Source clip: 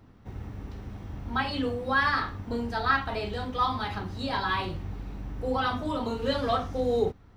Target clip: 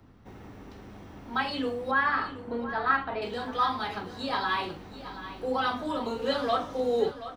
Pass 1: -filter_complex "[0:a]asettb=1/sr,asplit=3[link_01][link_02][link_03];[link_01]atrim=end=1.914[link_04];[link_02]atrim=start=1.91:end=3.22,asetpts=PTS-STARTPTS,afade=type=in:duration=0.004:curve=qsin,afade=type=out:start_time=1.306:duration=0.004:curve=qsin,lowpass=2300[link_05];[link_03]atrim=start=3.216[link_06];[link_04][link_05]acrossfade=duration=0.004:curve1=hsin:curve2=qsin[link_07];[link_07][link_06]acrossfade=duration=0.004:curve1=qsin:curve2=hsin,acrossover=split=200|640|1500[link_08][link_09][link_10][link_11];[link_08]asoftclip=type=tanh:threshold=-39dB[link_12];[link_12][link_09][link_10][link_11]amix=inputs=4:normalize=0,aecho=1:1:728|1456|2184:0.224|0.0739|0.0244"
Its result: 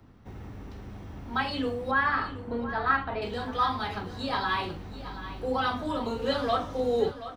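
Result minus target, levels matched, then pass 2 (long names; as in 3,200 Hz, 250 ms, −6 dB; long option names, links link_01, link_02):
soft clipping: distortion −6 dB
-filter_complex "[0:a]asettb=1/sr,asplit=3[link_01][link_02][link_03];[link_01]atrim=end=1.914[link_04];[link_02]atrim=start=1.91:end=3.22,asetpts=PTS-STARTPTS,afade=type=in:duration=0.004:curve=qsin,afade=type=out:start_time=1.306:duration=0.004:curve=qsin,lowpass=2300[link_05];[link_03]atrim=start=3.216[link_06];[link_04][link_05]acrossfade=duration=0.004:curve1=hsin:curve2=qsin[link_07];[link_07][link_06]acrossfade=duration=0.004:curve1=qsin:curve2=hsin,acrossover=split=200|640|1500[link_08][link_09][link_10][link_11];[link_08]asoftclip=type=tanh:threshold=-50.5dB[link_12];[link_12][link_09][link_10][link_11]amix=inputs=4:normalize=0,aecho=1:1:728|1456|2184:0.224|0.0739|0.0244"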